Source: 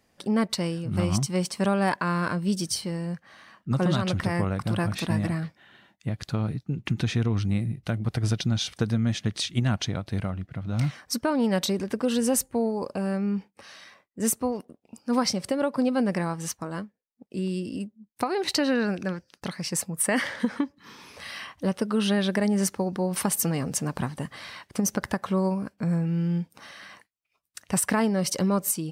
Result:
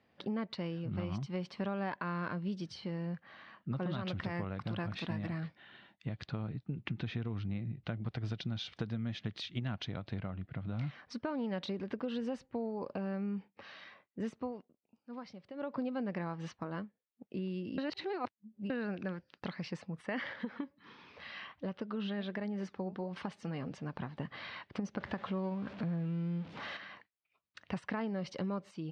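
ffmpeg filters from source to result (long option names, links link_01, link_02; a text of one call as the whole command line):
ffmpeg -i in.wav -filter_complex "[0:a]asettb=1/sr,asplit=3[link_01][link_02][link_03];[link_01]atrim=end=4.054[link_04];[link_02]atrim=start=4.05:end=6.26,asetpts=PTS-STARTPTS,afade=type=in:duration=0.004:curve=qsin,afade=type=out:start_time=2.206:duration=0.004:curve=qsin,aemphasis=mode=production:type=50kf[link_05];[link_03]atrim=start=6.256[link_06];[link_04][link_05]acrossfade=duration=0.004:curve1=hsin:curve2=qsin[link_07];[link_07][link_06]acrossfade=duration=0.004:curve1=qsin:curve2=hsin,asettb=1/sr,asplit=3[link_08][link_09][link_10];[link_08]atrim=end=8.014[link_11];[link_09]atrim=start=8.01:end=10.15,asetpts=PTS-STARTPTS,afade=type=in:duration=0.004:curve=qsin,afade=type=out:start_time=2.136:duration=0.004:curve=qsin,highshelf=frequency=5700:gain=9[link_12];[link_10]atrim=start=10.146[link_13];[link_11][link_12]acrossfade=duration=0.004:curve1=hsin:curve2=qsin[link_14];[link_14][link_13]acrossfade=duration=0.004:curve1=qsin:curve2=hsin,asettb=1/sr,asplit=3[link_15][link_16][link_17];[link_15]atrim=end=20.334[link_18];[link_16]atrim=start=20.33:end=24.2,asetpts=PTS-STARTPTS,afade=type=in:duration=0.004:curve=qsin,afade=type=out:start_time=3.866:duration=0.004:curve=qsin,flanger=delay=0.6:depth=4.9:regen=79:speed=1.4:shape=sinusoidal[link_19];[link_17]atrim=start=24.196[link_20];[link_18][link_19]acrossfade=duration=0.004:curve1=hsin:curve2=qsin[link_21];[link_21][link_20]acrossfade=duration=0.004:curve1=qsin:curve2=hsin,asettb=1/sr,asplit=3[link_22][link_23][link_24];[link_22]atrim=end=24.974[link_25];[link_23]atrim=start=24.97:end=26.77,asetpts=PTS-STARTPTS,afade=type=in:duration=0.004:curve=qsin,afade=type=out:start_time=1.796:duration=0.004:curve=qsin,aeval=exprs='val(0)+0.5*0.0158*sgn(val(0))':channel_layout=same[link_26];[link_24]atrim=start=26.766[link_27];[link_25][link_26]acrossfade=duration=0.004:curve1=hsin:curve2=qsin[link_28];[link_28][link_27]acrossfade=duration=0.004:curve1=qsin:curve2=hsin,asplit=5[link_29][link_30][link_31][link_32][link_33];[link_29]atrim=end=14.68,asetpts=PTS-STARTPTS,afade=type=out:start_time=14.43:duration=0.25:silence=0.125893[link_34];[link_30]atrim=start=14.68:end=15.54,asetpts=PTS-STARTPTS,volume=-18dB[link_35];[link_31]atrim=start=15.54:end=17.782,asetpts=PTS-STARTPTS,afade=type=in:duration=0.25:silence=0.125893[link_36];[link_32]atrim=start=17.778:end=18.702,asetpts=PTS-STARTPTS,areverse[link_37];[link_33]atrim=start=18.698[link_38];[link_34][link_35][link_36]concat=n=3:v=0:a=1[link_39];[link_39][link_37]acrossfade=duration=0.004:curve1=hsin:curve2=hsin[link_40];[link_40][link_38]acrossfade=duration=0.004:curve1=hsin:curve2=hsin,highpass=72,acompressor=threshold=-33dB:ratio=3,lowpass=frequency=3800:width=0.5412,lowpass=frequency=3800:width=1.3066,volume=-3.5dB" out.wav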